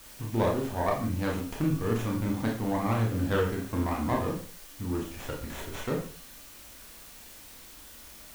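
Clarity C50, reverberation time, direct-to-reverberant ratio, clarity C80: 6.0 dB, non-exponential decay, −1.0 dB, 10.5 dB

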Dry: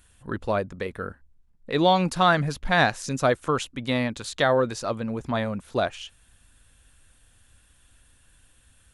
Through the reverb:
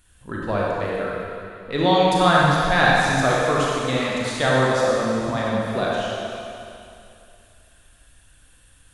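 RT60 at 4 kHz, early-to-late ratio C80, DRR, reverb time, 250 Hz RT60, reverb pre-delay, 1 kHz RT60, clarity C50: 2.6 s, −1.5 dB, −5.5 dB, 2.6 s, 2.5 s, 28 ms, 2.6 s, −3.5 dB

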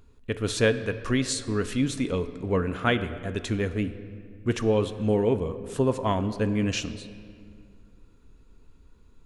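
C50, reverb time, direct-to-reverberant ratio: 12.5 dB, 2.2 s, 10.0 dB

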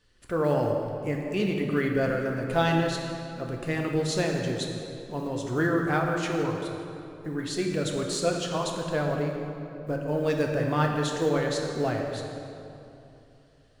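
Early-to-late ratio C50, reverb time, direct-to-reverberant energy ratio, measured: 2.5 dB, 2.8 s, 0.5 dB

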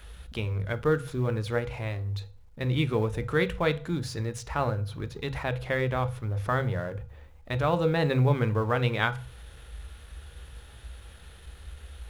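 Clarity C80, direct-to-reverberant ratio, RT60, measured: 22.0 dB, 9.5 dB, 0.40 s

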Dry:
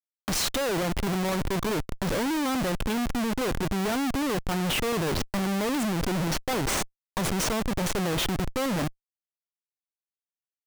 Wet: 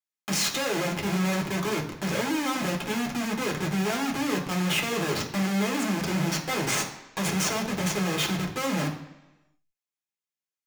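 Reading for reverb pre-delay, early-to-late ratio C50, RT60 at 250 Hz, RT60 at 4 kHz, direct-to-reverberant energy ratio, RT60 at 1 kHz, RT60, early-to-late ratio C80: 3 ms, 9.0 dB, 0.95 s, 0.95 s, −2.0 dB, 1.0 s, 1.0 s, 12.0 dB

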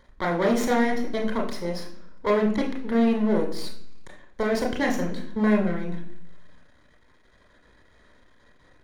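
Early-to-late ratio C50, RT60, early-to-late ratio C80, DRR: 8.0 dB, 0.60 s, 11.5 dB, 0.0 dB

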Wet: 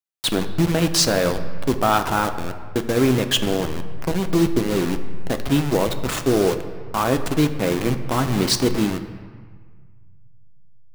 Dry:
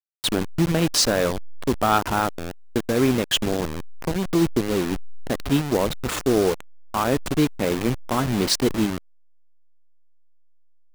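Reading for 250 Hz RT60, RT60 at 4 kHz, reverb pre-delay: 2.6 s, 1.1 s, 6 ms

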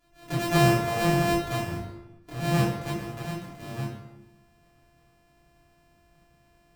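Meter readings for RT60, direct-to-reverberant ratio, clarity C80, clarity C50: 1.0 s, −9.5 dB, 5.5 dB, 2.5 dB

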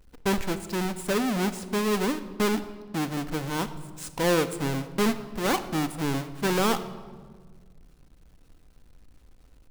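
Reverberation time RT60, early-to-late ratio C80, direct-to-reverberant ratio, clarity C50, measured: 1.6 s, 14.5 dB, 9.5 dB, 13.0 dB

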